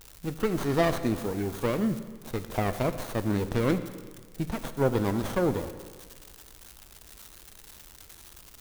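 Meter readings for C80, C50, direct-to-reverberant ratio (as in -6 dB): 13.0 dB, 11.5 dB, 10.0 dB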